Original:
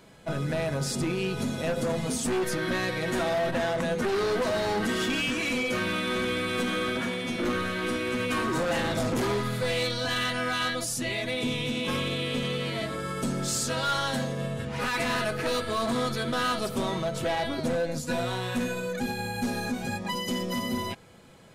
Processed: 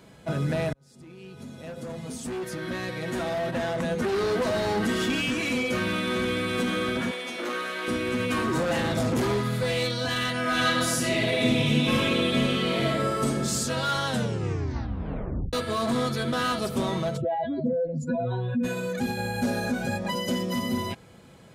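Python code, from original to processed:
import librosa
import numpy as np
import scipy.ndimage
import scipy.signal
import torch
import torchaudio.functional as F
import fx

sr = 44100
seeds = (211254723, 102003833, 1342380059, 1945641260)

y = fx.highpass(x, sr, hz=480.0, slope=12, at=(7.11, 7.88))
y = fx.reverb_throw(y, sr, start_s=10.41, length_s=2.84, rt60_s=1.5, drr_db=-3.5)
y = fx.spec_expand(y, sr, power=2.3, at=(17.16, 18.63), fade=0.02)
y = fx.small_body(y, sr, hz=(590.0, 1500.0), ring_ms=45, db=13, at=(19.17, 20.35))
y = fx.edit(y, sr, fx.fade_in_span(start_s=0.73, length_s=3.74),
    fx.tape_stop(start_s=14.08, length_s=1.45), tone=tone)
y = scipy.signal.sosfilt(scipy.signal.butter(2, 41.0, 'highpass', fs=sr, output='sos'), y)
y = fx.low_shelf(y, sr, hz=320.0, db=4.5)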